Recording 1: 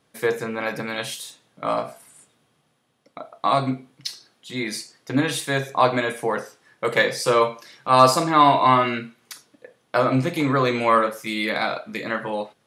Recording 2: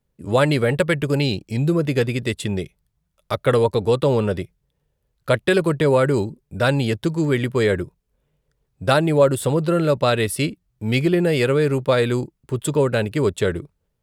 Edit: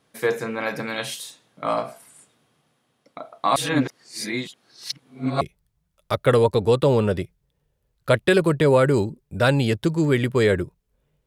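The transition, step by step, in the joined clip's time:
recording 1
3.56–5.41 s: reverse
5.41 s: go over to recording 2 from 2.61 s

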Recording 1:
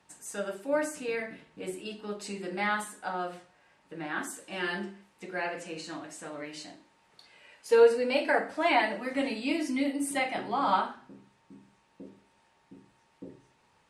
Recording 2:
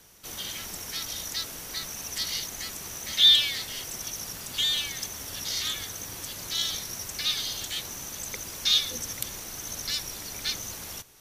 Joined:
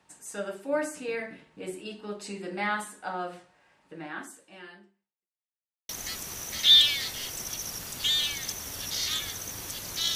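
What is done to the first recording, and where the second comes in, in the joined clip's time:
recording 1
3.84–5.29 s: fade out quadratic
5.29–5.89 s: mute
5.89 s: go over to recording 2 from 2.43 s

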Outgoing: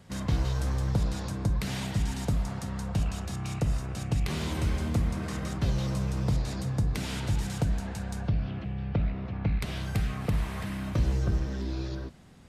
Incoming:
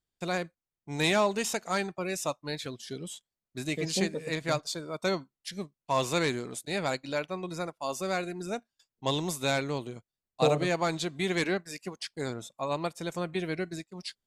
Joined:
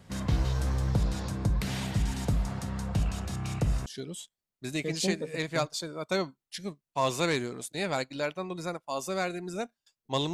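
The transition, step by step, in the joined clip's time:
outgoing
3.86 s: go over to incoming from 2.79 s

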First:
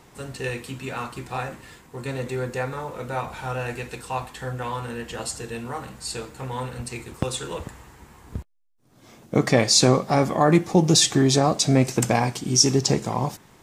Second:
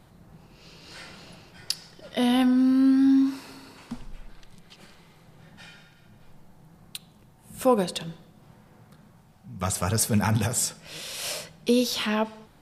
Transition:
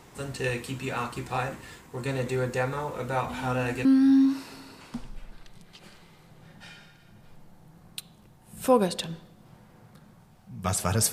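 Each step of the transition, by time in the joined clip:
first
3.29 s: add second from 2.26 s 0.56 s -17.5 dB
3.85 s: go over to second from 2.82 s

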